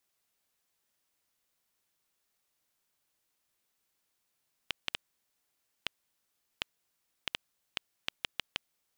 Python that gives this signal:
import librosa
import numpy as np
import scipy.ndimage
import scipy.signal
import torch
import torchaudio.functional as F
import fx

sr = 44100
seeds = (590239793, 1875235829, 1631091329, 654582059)

y = fx.geiger_clicks(sr, seeds[0], length_s=4.41, per_s=2.7, level_db=-12.5)